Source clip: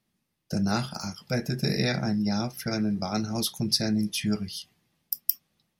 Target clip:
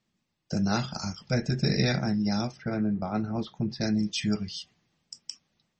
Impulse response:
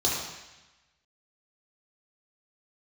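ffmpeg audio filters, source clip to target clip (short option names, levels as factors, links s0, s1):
-filter_complex "[0:a]asplit=3[s0][s1][s2];[s0]afade=t=out:st=0.87:d=0.02[s3];[s1]lowshelf=f=79:g=11,afade=t=in:st=0.87:d=0.02,afade=t=out:st=1.97:d=0.02[s4];[s2]afade=t=in:st=1.97:d=0.02[s5];[s3][s4][s5]amix=inputs=3:normalize=0,asettb=1/sr,asplit=3[s6][s7][s8];[s6]atrim=end=2.574[s9];[s7]atrim=start=2.57:end=3.81,asetpts=PTS-STARTPTS,afade=t=in:d=0.004:c=qsin,afade=t=out:st=1.236:d=0.004:c=qsin,lowpass=1700[s10];[s8]atrim=start=3.806[s11];[s9][s10]acrossfade=d=0.004:c1=hsin:c2=qsin[s12];[s12][s11]acrossfade=d=0.004:c1=qsin:c2=hsin" -ar 44100 -c:a libmp3lame -b:a 32k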